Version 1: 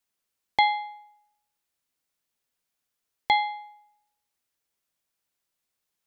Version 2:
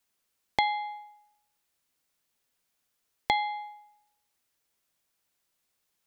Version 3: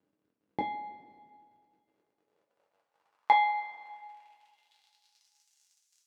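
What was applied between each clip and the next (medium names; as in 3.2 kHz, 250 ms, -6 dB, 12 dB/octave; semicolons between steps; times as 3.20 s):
compression 2.5:1, threshold -31 dBFS, peak gain reduction 10 dB; trim +4 dB
crackle 57 per s -49 dBFS; band-pass sweep 270 Hz -> 6.4 kHz, 1.65–5.46 s; two-slope reverb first 0.23 s, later 2.2 s, from -19 dB, DRR -2 dB; trim +6 dB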